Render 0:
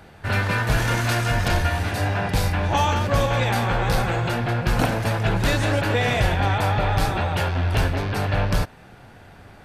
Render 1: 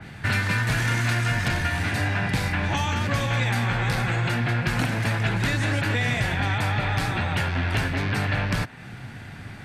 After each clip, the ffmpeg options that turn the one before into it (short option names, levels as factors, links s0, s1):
-filter_complex "[0:a]equalizer=f=125:t=o:w=1:g=11,equalizer=f=250:t=o:w=1:g=6,equalizer=f=500:t=o:w=1:g=-4,equalizer=f=2000:t=o:w=1:g=9,equalizer=f=4000:t=o:w=1:g=4,equalizer=f=8000:t=o:w=1:g=6,acrossover=split=250|2000|4400[s0][s1][s2][s3];[s0]acompressor=threshold=0.0447:ratio=4[s4];[s1]acompressor=threshold=0.0398:ratio=4[s5];[s2]acompressor=threshold=0.02:ratio=4[s6];[s3]acompressor=threshold=0.0224:ratio=4[s7];[s4][s5][s6][s7]amix=inputs=4:normalize=0,adynamicequalizer=threshold=0.00794:dfrequency=3500:dqfactor=0.7:tfrequency=3500:tqfactor=0.7:attack=5:release=100:ratio=0.375:range=3:mode=cutabove:tftype=highshelf"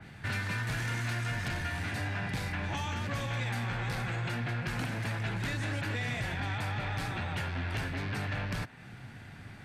-af "asoftclip=type=tanh:threshold=0.133,volume=0.376"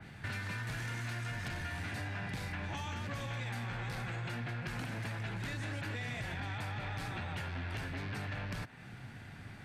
-af "acompressor=threshold=0.0178:ratio=6,volume=0.841"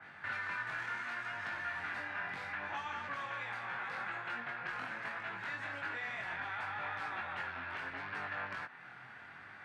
-af "flanger=delay=20:depth=3.6:speed=0.72,bandpass=f=1300:t=q:w=1.5:csg=0,volume=2.99"